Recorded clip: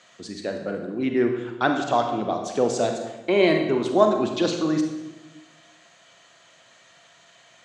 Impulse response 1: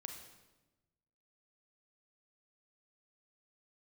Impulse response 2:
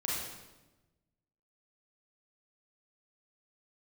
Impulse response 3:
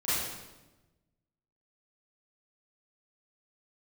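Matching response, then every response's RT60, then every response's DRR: 1; 1.1, 1.1, 1.1 s; 3.5, -6.0, -15.0 dB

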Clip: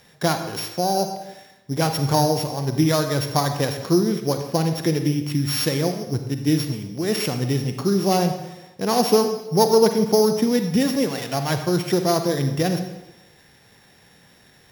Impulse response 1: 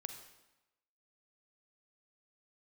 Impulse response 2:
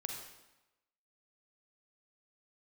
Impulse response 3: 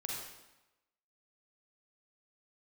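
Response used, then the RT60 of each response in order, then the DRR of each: 1; 1.0, 1.0, 1.0 s; 6.5, 2.0, -2.5 dB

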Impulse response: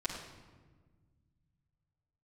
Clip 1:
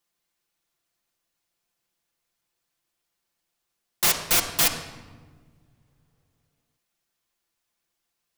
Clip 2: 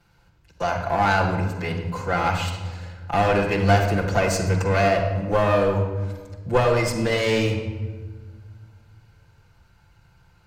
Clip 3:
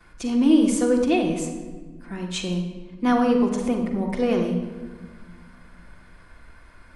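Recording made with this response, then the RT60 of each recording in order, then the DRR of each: 2; 1.5, 1.4, 1.4 s; 0.0, -8.0, -12.5 dB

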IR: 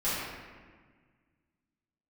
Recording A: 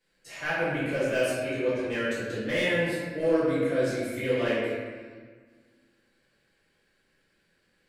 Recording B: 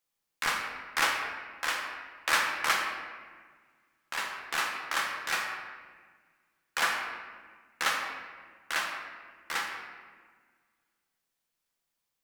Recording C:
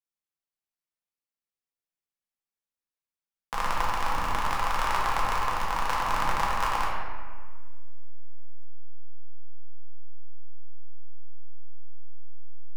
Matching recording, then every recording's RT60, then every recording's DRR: A; 1.5, 1.6, 1.6 s; -13.5, 0.5, -5.5 dB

